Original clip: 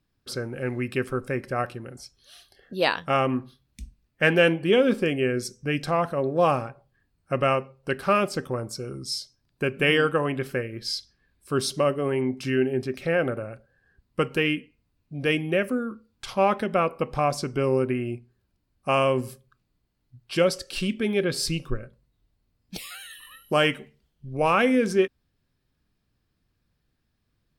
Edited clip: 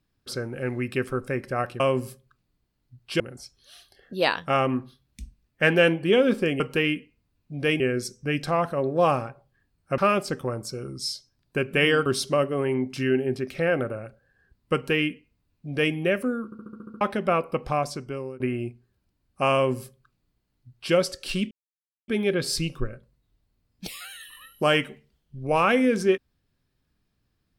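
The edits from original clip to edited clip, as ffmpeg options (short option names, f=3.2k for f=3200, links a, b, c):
-filter_complex "[0:a]asplit=17[a][b][c][d][e][f][g][h][i][j][k][l][m][n][o][p][q];[a]atrim=end=1.802[r];[b]atrim=start=19.008:end=20.412[s];[c]atrim=start=1.798:end=5.202[t];[d]atrim=start=14.208:end=15.412[u];[e]atrim=start=5.198:end=7.382[v];[f]atrim=start=8.038:end=10.122[w];[g]atrim=start=11.528:end=15.992[x];[h]atrim=start=15.918:end=15.992[y];[i]atrim=start=15.918:end=15.992[z];[j]atrim=start=15.918:end=15.992[aa];[k]atrim=start=15.918:end=15.992[ab];[l]atrim=start=15.918:end=15.992[ac];[m]atrim=start=15.918:end=15.992[ad];[n]atrim=start=15.918:end=15.992[ae];[o]atrim=start=16.478:end=17.87,asetpts=PTS-STARTPTS,afade=t=out:st=0.612:d=0.78:silence=0.0841395[af];[p]atrim=start=17.87:end=20.98,asetpts=PTS-STARTPTS,afade=t=in:d=0.004:c=hsin:silence=0.0841395,afade=t=out:st=3.106:d=0.004:c=hsin,apad=pad_dur=0.57[ag];[q]atrim=start=20.98,asetpts=PTS-STARTPTS,afade=t=in:d=0.004:c=hsin[ah];[r][s]acrossfade=d=0.004:c1=hsin:c2=hsin[ai];[ai][t]acrossfade=d=0.004:c1=hsin:c2=hsin[aj];[aj][u]acrossfade=d=0.004:c1=hsin:c2=hsin[ak];[ak][v]acrossfade=d=0.004:c1=hsin:c2=hsin[al];[al][w]acrossfade=d=0.004:c1=hsin:c2=hsin[am];[am][x]acrossfade=d=0.004:c1=hsin:c2=hsin[an];[an][y]acrossfade=d=0.004:c1=hsin:c2=hsin[ao];[ao][z]acrossfade=d=0.004:c1=hsin:c2=hsin[ap];[ap][aa]acrossfade=d=0.004:c1=hsin:c2=hsin[aq];[aq][ab]acrossfade=d=0.004:c1=hsin:c2=hsin[ar];[ar][ac]acrossfade=d=0.004:c1=hsin:c2=hsin[as];[as][ad]acrossfade=d=0.004:c1=hsin:c2=hsin[at];[at][ae]acrossfade=d=0.004:c1=hsin:c2=hsin[au];[af][ag][ah]concat=n=3:v=0:a=1[av];[au][av]acrossfade=d=0.004:c1=hsin:c2=hsin"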